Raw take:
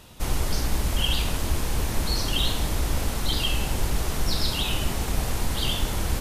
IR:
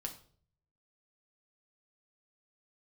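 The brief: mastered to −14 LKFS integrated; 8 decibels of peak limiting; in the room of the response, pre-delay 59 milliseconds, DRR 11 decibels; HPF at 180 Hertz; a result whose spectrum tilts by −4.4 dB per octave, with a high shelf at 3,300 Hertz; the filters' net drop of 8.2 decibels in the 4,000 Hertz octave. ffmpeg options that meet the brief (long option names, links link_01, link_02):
-filter_complex "[0:a]highpass=180,highshelf=frequency=3300:gain=-8.5,equalizer=frequency=4000:width_type=o:gain=-5,alimiter=level_in=2.5dB:limit=-24dB:level=0:latency=1,volume=-2.5dB,asplit=2[link_01][link_02];[1:a]atrim=start_sample=2205,adelay=59[link_03];[link_02][link_03]afir=irnorm=-1:irlink=0,volume=-9.5dB[link_04];[link_01][link_04]amix=inputs=2:normalize=0,volume=21.5dB"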